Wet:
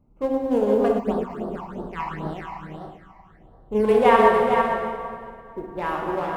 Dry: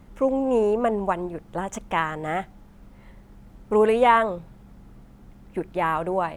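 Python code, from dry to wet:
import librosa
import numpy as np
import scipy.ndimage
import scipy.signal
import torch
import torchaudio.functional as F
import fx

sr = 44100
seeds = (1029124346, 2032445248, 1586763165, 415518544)

y = fx.wiener(x, sr, points=25)
y = y + 10.0 ** (-5.5 / 20.0) * np.pad(y, (int(453 * sr / 1000.0), 0))[:len(y)]
y = fx.rev_plate(y, sr, seeds[0], rt60_s=3.3, hf_ratio=0.7, predelay_ms=0, drr_db=-2.0)
y = fx.quant_float(y, sr, bits=6)
y = fx.phaser_stages(y, sr, stages=8, low_hz=440.0, high_hz=2300.0, hz=fx.line((0.98, 3.7), (3.83, 1.0)), feedback_pct=35, at=(0.98, 3.83), fade=0.02)
y = fx.upward_expand(y, sr, threshold_db=-36.0, expansion=1.5)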